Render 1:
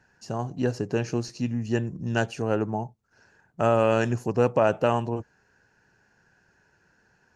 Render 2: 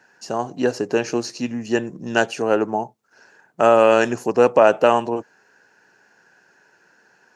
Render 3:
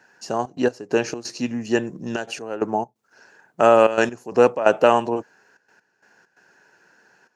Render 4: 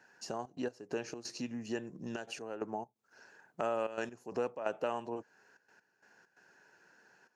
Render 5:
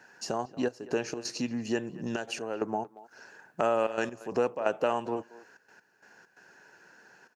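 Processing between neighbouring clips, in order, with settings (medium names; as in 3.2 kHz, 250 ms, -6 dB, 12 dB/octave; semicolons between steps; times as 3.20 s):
high-pass 300 Hz 12 dB/octave; trim +8.5 dB
trance gate "xxxx.x..xx.xxxx" 132 bpm -12 dB
compression 2:1, threshold -34 dBFS, peak gain reduction 13.5 dB; trim -7.5 dB
speakerphone echo 230 ms, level -18 dB; trim +7.5 dB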